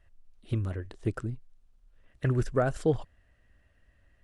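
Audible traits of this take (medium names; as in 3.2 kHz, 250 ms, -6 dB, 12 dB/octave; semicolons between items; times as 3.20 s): noise floor -66 dBFS; spectral tilt -6.5 dB/octave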